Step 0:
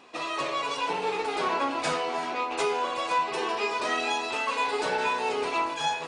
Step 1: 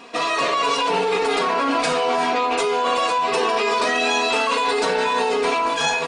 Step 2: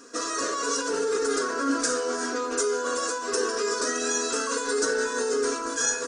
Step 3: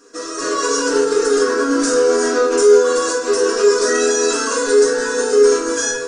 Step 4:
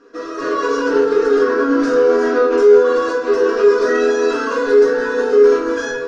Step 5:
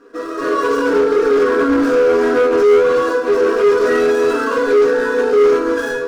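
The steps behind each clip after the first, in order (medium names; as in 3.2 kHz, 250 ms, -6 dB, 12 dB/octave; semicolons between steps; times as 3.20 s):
band-stop 860 Hz, Q 18; comb 4.3 ms, depth 57%; in parallel at +2.5 dB: compressor with a negative ratio -29 dBFS, ratio -0.5; on the sum: trim +1.5 dB
FFT filter 120 Hz 0 dB, 170 Hz -15 dB, 270 Hz +5 dB, 520 Hz +1 dB, 790 Hz -17 dB, 1.5 kHz +7 dB, 2.3 kHz -15 dB, 3.8 kHz -7 dB, 6.1 kHz +14 dB, 12 kHz +6 dB; trim -6 dB
level rider gain up to 11.5 dB; peak limiter -9 dBFS, peak gain reduction 6 dB; simulated room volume 42 m³, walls mixed, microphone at 0.64 m; trim -3.5 dB
in parallel at -6.5 dB: one-sided clip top -8 dBFS, bottom -7 dBFS; on the sum: distance through air 300 m; trim -1 dB
median filter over 9 samples; in parallel at -5 dB: wavefolder -13 dBFS; on the sum: trim -1.5 dB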